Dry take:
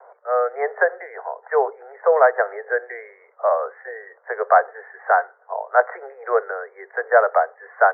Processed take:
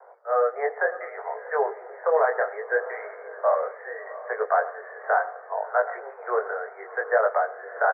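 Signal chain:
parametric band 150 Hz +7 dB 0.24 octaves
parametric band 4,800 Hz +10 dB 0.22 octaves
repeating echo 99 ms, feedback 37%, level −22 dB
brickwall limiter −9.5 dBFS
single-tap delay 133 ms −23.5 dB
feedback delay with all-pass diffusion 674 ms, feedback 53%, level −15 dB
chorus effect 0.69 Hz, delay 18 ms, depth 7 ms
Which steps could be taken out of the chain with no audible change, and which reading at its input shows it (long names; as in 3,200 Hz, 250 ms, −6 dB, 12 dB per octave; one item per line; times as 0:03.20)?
parametric band 150 Hz: nothing at its input below 360 Hz
parametric band 4,800 Hz: nothing at its input above 2,000 Hz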